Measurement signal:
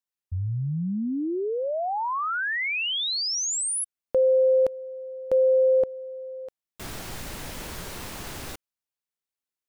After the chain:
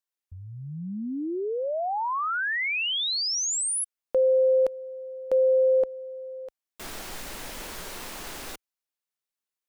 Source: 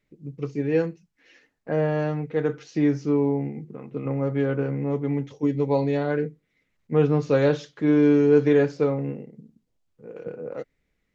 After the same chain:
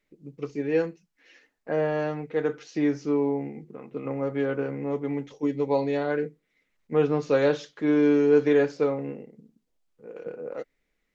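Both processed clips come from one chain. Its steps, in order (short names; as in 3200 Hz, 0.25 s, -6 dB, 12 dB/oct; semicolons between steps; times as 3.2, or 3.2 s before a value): bell 95 Hz -13.5 dB 1.8 oct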